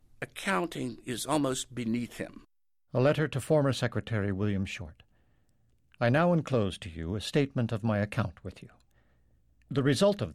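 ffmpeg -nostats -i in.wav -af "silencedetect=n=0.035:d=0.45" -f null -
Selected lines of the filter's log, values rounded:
silence_start: 2.25
silence_end: 2.94 | silence_duration: 0.69
silence_start: 4.81
silence_end: 6.01 | silence_duration: 1.20
silence_start: 8.48
silence_end: 9.72 | silence_duration: 1.23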